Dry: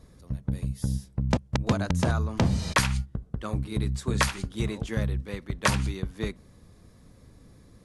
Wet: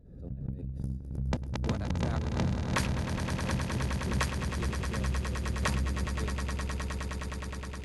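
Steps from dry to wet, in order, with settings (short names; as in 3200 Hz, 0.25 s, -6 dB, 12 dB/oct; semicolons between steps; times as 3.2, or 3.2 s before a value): Wiener smoothing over 41 samples; swelling echo 0.104 s, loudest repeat 8, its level -10 dB; backwards sustainer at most 68 dB/s; gain -8 dB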